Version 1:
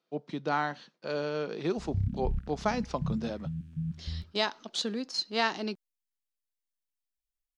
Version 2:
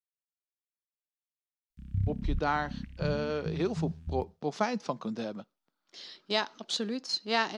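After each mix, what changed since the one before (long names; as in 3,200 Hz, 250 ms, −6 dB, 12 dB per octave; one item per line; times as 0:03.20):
speech: entry +1.95 s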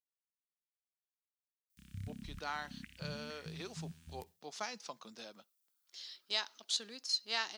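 speech −11.5 dB
master: add spectral tilt +4.5 dB per octave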